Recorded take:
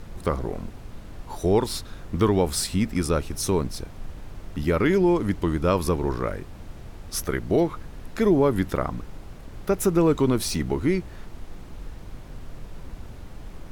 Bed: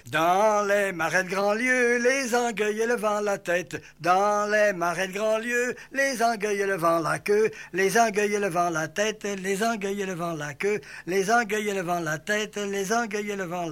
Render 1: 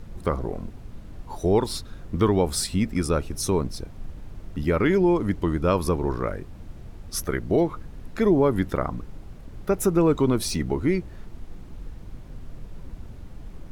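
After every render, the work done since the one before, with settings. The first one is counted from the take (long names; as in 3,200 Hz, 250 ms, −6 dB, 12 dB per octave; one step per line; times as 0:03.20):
broadband denoise 6 dB, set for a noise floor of −41 dBFS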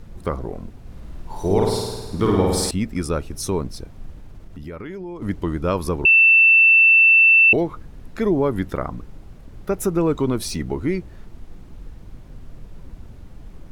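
0:00.81–0:02.71: flutter between parallel walls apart 9 metres, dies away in 1.3 s
0:04.15–0:05.22: downward compressor 3 to 1, threshold −34 dBFS
0:06.05–0:07.53: beep over 2,670 Hz −9 dBFS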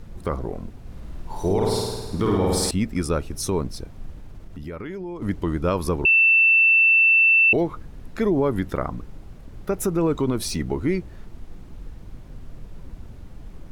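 brickwall limiter −12.5 dBFS, peak gain reduction 5.5 dB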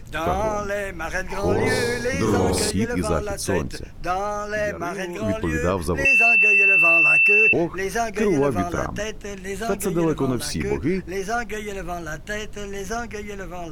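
mix in bed −3.5 dB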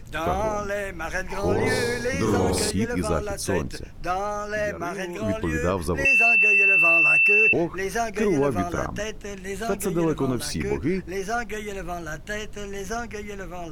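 level −2 dB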